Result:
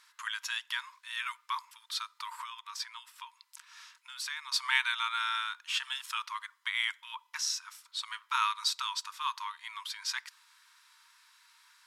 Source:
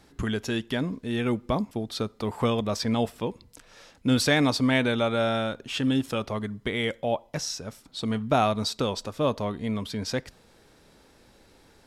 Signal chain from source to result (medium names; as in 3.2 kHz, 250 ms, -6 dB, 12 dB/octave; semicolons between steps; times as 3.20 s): 2.34–4.52 s: compression 12:1, threshold -31 dBFS, peak gain reduction 14.5 dB; brick-wall FIR high-pass 900 Hz